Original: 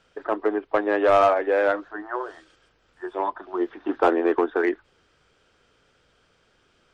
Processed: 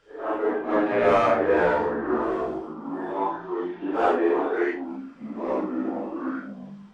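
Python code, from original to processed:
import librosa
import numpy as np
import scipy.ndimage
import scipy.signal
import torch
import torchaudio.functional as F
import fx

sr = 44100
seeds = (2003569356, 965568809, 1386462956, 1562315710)

y = fx.phase_scramble(x, sr, seeds[0], window_ms=200)
y = fx.dmg_buzz(y, sr, base_hz=120.0, harmonics=21, level_db=-31.0, tilt_db=-1, odd_only=False, at=(0.91, 1.33), fade=0.02)
y = fx.echo_pitch(y, sr, ms=108, semitones=-5, count=2, db_per_echo=-6.0)
y = fx.doubler(y, sr, ms=45.0, db=-12)
y = y * 10.0 ** (-1.5 / 20.0)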